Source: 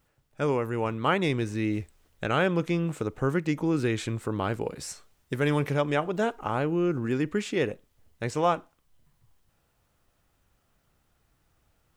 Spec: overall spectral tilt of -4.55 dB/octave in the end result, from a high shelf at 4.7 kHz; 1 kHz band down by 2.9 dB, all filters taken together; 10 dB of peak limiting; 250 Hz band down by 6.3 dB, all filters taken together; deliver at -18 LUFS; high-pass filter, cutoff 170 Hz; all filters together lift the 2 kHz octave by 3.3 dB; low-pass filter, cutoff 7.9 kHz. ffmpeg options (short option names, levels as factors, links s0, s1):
-af "highpass=170,lowpass=7900,equalizer=f=250:t=o:g=-8,equalizer=f=1000:t=o:g=-5.5,equalizer=f=2000:t=o:g=5.5,highshelf=f=4700:g=5,volume=5.96,alimiter=limit=0.596:level=0:latency=1"